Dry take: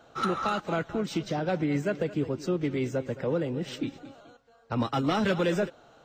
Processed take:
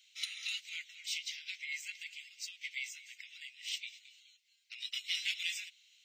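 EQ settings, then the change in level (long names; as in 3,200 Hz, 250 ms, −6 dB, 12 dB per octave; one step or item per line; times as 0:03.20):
Chebyshev high-pass filter 2,100 Hz, order 6
+3.5 dB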